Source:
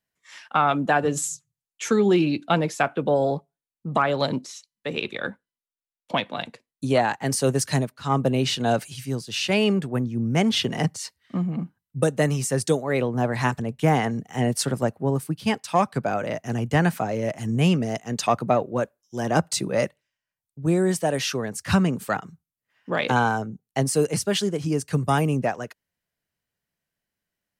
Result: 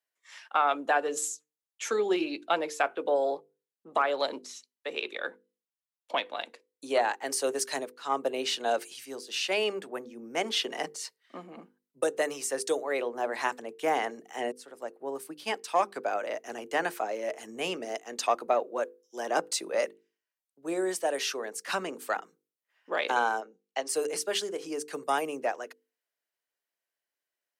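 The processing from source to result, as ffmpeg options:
ffmpeg -i in.wav -filter_complex "[0:a]asplit=3[link_01][link_02][link_03];[link_01]afade=type=out:start_time=23.4:duration=0.02[link_04];[link_02]highpass=frequency=200:width=0.5412,highpass=frequency=200:width=1.3066,equalizer=frequency=240:width_type=q:width=4:gain=-8,equalizer=frequency=380:width_type=q:width=4:gain=-8,equalizer=frequency=2800:width_type=q:width=4:gain=4,lowpass=frequency=6700:width=0.5412,lowpass=frequency=6700:width=1.3066,afade=type=in:start_time=23.4:duration=0.02,afade=type=out:start_time=23.88:duration=0.02[link_05];[link_03]afade=type=in:start_time=23.88:duration=0.02[link_06];[link_04][link_05][link_06]amix=inputs=3:normalize=0,asplit=2[link_07][link_08];[link_07]atrim=end=14.52,asetpts=PTS-STARTPTS,afade=type=out:start_time=14.516:duration=0.004:curve=hsin[link_09];[link_08]atrim=start=14.52,asetpts=PTS-STARTPTS,afade=type=in:duration=0.82[link_10];[link_09][link_10]concat=n=2:v=0:a=1,highpass=frequency=350:width=0.5412,highpass=frequency=350:width=1.3066,bandreject=frequency=50:width_type=h:width=6,bandreject=frequency=100:width_type=h:width=6,bandreject=frequency=150:width_type=h:width=6,bandreject=frequency=200:width_type=h:width=6,bandreject=frequency=250:width_type=h:width=6,bandreject=frequency=300:width_type=h:width=6,bandreject=frequency=350:width_type=h:width=6,bandreject=frequency=400:width_type=h:width=6,bandreject=frequency=450:width_type=h:width=6,bandreject=frequency=500:width_type=h:width=6,volume=-4.5dB" out.wav

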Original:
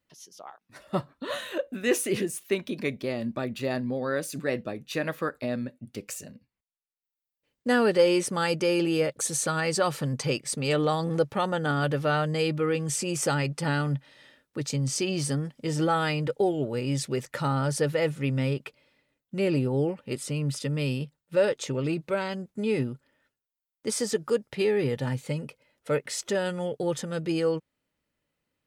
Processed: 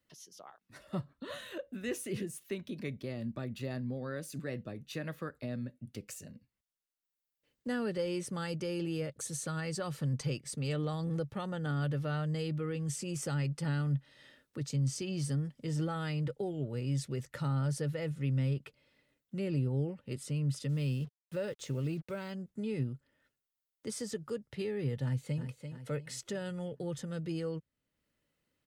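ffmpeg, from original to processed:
ffmpeg -i in.wav -filter_complex "[0:a]asplit=3[link_01][link_02][link_03];[link_01]afade=type=out:start_time=20.68:duration=0.02[link_04];[link_02]acrusher=bits=7:mix=0:aa=0.5,afade=type=in:start_time=20.68:duration=0.02,afade=type=out:start_time=22.31:duration=0.02[link_05];[link_03]afade=type=in:start_time=22.31:duration=0.02[link_06];[link_04][link_05][link_06]amix=inputs=3:normalize=0,asplit=2[link_07][link_08];[link_08]afade=type=in:start_time=25.03:duration=0.01,afade=type=out:start_time=25.43:duration=0.01,aecho=0:1:340|680|1020|1360|1700:0.316228|0.142302|0.0640361|0.0288163|0.0129673[link_09];[link_07][link_09]amix=inputs=2:normalize=0,equalizer=frequency=860:width_type=o:width=0.77:gain=-3.5,bandreject=frequency=2400:width=22,acrossover=split=160[link_10][link_11];[link_11]acompressor=threshold=-59dB:ratio=1.5[link_12];[link_10][link_12]amix=inputs=2:normalize=0" out.wav

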